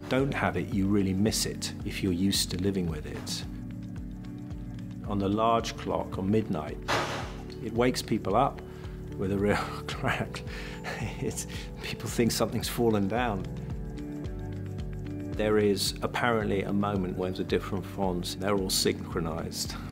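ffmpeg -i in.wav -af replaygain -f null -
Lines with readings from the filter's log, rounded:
track_gain = +9.2 dB
track_peak = 0.253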